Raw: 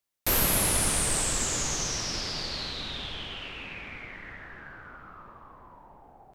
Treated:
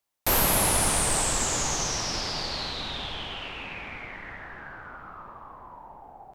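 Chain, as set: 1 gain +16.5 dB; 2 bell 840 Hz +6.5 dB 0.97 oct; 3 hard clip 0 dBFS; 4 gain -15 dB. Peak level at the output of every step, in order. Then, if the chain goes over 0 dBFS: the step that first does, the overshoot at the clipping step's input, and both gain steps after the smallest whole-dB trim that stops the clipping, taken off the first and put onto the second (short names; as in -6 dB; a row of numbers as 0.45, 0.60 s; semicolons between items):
+5.5, +6.0, 0.0, -15.0 dBFS; step 1, 6.0 dB; step 1 +10.5 dB, step 4 -9 dB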